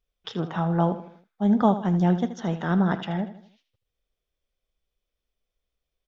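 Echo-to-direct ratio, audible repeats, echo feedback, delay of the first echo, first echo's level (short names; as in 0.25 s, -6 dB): -11.5 dB, 4, 43%, 79 ms, -12.5 dB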